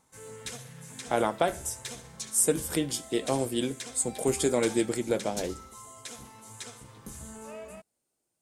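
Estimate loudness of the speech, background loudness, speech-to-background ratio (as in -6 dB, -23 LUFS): -29.0 LUFS, -42.5 LUFS, 13.5 dB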